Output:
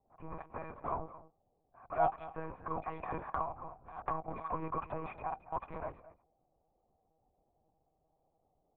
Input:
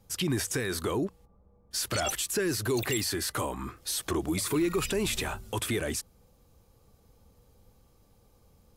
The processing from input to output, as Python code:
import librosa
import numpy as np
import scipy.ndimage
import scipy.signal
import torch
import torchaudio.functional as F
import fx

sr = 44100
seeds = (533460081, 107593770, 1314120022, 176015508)

y = fx.wiener(x, sr, points=41)
y = fx.formant_cascade(y, sr, vowel='a')
y = fx.peak_eq(y, sr, hz=1700.0, db=13.0, octaves=1.4)
y = fx.env_lowpass(y, sr, base_hz=1600.0, full_db=-42.0)
y = y + 10.0 ** (-16.0 / 20.0) * np.pad(y, (int(222 * sr / 1000.0), 0))[:len(y)]
y = fx.env_lowpass(y, sr, base_hz=1200.0, full_db=-45.0)
y = fx.lpc_monotone(y, sr, seeds[0], pitch_hz=160.0, order=10)
y = fx.band_squash(y, sr, depth_pct=100, at=(3.03, 5.13))
y = F.gain(torch.from_numpy(y), 8.5).numpy()